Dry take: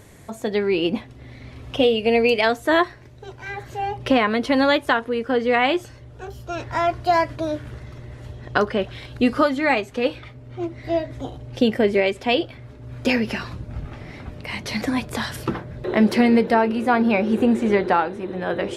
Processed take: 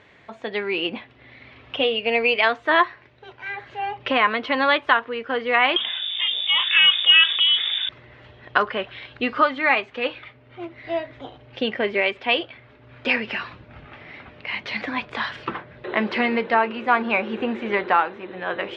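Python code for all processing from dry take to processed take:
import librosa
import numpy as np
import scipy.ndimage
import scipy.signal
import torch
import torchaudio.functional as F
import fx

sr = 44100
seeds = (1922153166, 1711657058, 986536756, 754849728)

y = fx.chain(x, sr, fx.freq_invert(carrier_hz=3600),
    fx.env_flatten(amount_pct=50), at=(5.76, 7.89))
y = fx.dynamic_eq(y, sr, hz=1100.0, q=3.1, threshold_db=-37.0, ratio=4.0, max_db=6)
y = scipy.signal.sosfilt(scipy.signal.butter(4, 3000.0, 'lowpass', fs=sr, output='sos'), y)
y = fx.tilt_eq(y, sr, slope=4.0)
y = F.gain(torch.from_numpy(y), -1.0).numpy()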